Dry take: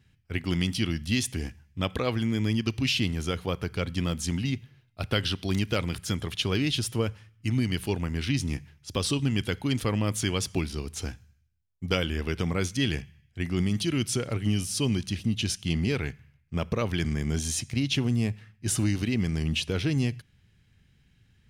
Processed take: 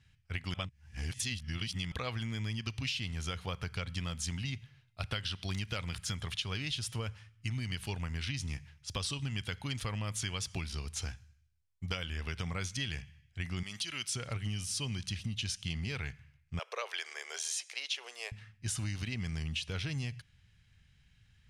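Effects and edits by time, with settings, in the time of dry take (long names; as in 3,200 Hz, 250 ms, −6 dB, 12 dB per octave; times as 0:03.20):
0:00.54–0:01.92: reverse
0:13.63–0:14.14: high-pass filter 800 Hz 6 dB per octave
0:16.59–0:18.32: Butterworth high-pass 420 Hz 48 dB per octave
whole clip: low-pass filter 9,500 Hz 12 dB per octave; parametric band 320 Hz −14 dB 1.7 octaves; downward compressor, threshold −33 dBFS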